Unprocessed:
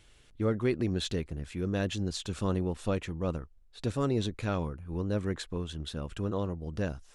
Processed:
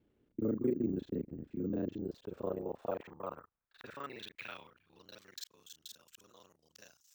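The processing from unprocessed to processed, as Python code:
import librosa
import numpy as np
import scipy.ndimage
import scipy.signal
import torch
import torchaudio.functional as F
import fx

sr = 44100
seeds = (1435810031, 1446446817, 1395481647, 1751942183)

y = fx.local_reverse(x, sr, ms=32.0)
y = fx.filter_sweep_bandpass(y, sr, from_hz=280.0, to_hz=6600.0, start_s=1.69, end_s=5.61, q=2.0)
y = np.repeat(y[::2], 2)[:len(y)]
y = y * 10.0 ** (1.0 / 20.0)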